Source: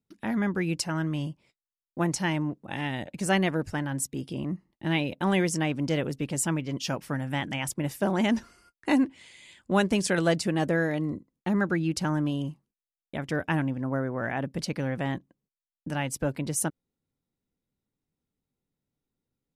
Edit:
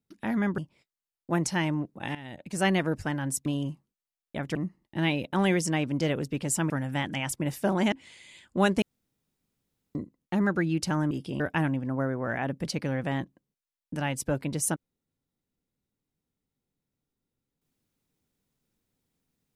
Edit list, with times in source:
0.58–1.26 cut
2.83–3.4 fade in, from -15.5 dB
4.14–4.43 swap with 12.25–13.34
6.58–7.08 cut
8.3–9.06 cut
9.96–11.09 room tone

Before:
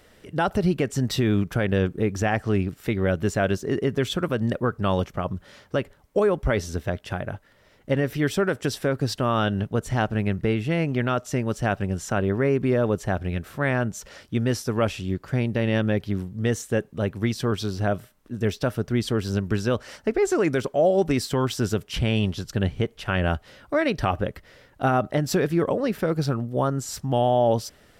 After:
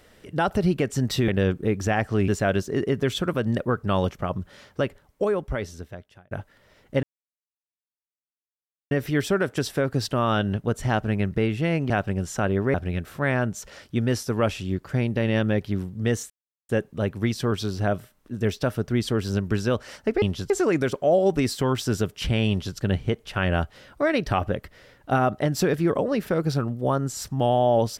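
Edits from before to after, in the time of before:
1.28–1.63 cut
2.63–3.23 cut
5.8–7.26 fade out
7.98 insert silence 1.88 s
10.97–11.63 cut
12.47–13.13 cut
16.69 insert silence 0.39 s
22.21–22.49 copy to 20.22

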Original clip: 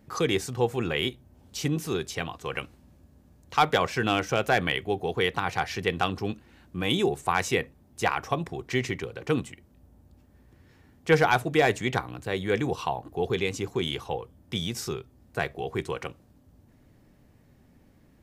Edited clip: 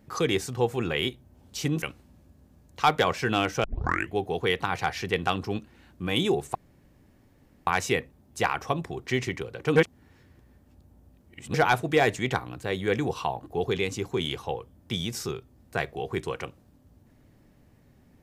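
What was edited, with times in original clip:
1.82–2.56 cut
4.38 tape start 0.48 s
7.29 insert room tone 1.12 s
9.38–11.16 reverse

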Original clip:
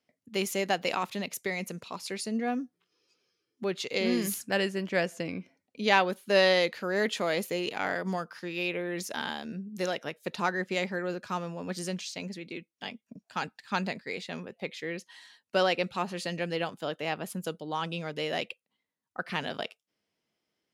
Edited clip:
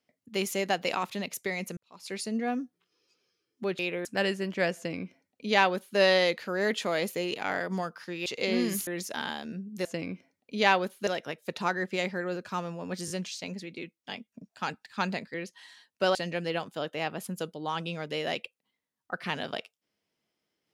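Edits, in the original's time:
1.77–2.14 fade in quadratic
3.79–4.4 swap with 8.61–8.87
5.11–6.33 copy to 9.85
11.84 stutter 0.02 s, 3 plays
14.08–14.87 cut
15.68–16.21 cut

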